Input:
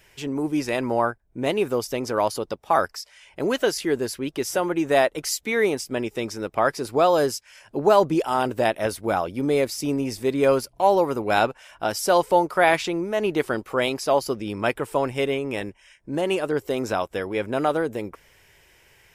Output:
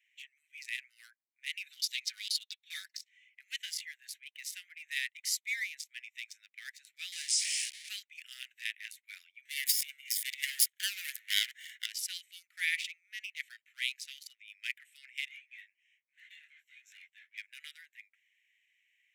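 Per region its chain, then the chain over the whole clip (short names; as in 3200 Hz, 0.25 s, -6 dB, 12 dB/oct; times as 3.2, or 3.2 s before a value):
1.66–2.97 bell 4000 Hz +13.5 dB 0.61 oct + comb 5.3 ms, depth 72%
7.12–7.89 switching spikes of -15.5 dBFS + brick-wall FIR band-pass 1000–9800 Hz
9.45–11.86 minimum comb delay 0.59 ms + high shelf 7000 Hz +11.5 dB + transient shaper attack +6 dB, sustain +12 dB
15.28–17.38 doubler 13 ms -7.5 dB + overloaded stage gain 25 dB + detuned doubles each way 41 cents
whole clip: Wiener smoothing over 9 samples; steep high-pass 1900 Hz 72 dB/oct; spectral noise reduction 6 dB; gain -4 dB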